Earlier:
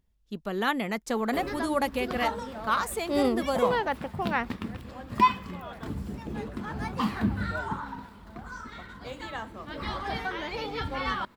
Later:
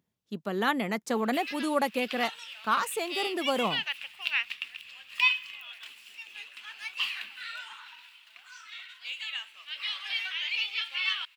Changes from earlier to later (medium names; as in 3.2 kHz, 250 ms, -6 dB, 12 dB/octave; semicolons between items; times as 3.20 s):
background: add resonant high-pass 2.7 kHz, resonance Q 6.4; master: add high-pass 120 Hz 24 dB/octave